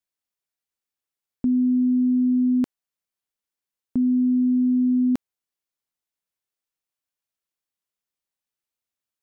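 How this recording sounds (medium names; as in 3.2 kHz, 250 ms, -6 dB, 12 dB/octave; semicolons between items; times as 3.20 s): noise floor -90 dBFS; spectral tilt -9.5 dB/octave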